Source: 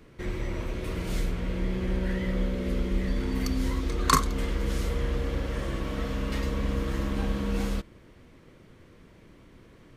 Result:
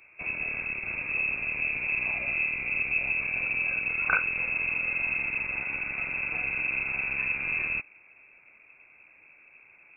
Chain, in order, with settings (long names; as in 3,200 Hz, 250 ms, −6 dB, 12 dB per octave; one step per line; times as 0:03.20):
loose part that buzzes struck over −32 dBFS, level −25 dBFS
voice inversion scrambler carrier 2,600 Hz
level −3.5 dB